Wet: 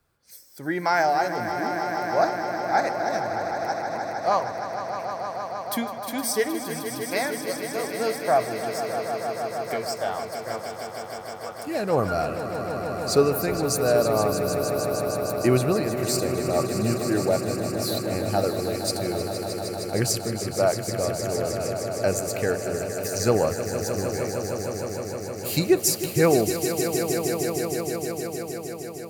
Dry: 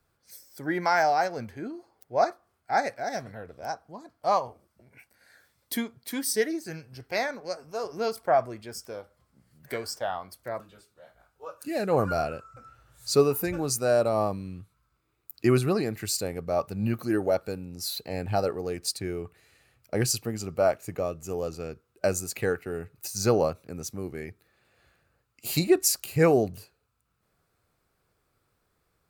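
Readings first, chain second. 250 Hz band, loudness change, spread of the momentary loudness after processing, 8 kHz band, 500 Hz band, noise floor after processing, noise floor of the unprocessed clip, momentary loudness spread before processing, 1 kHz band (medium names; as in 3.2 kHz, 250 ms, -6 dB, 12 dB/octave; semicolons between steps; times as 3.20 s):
+4.0 dB, +2.5 dB, 10 LU, +4.0 dB, +4.0 dB, -36 dBFS, -74 dBFS, 16 LU, +4.0 dB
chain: echo with a slow build-up 155 ms, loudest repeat 5, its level -10.5 dB; trim +1.5 dB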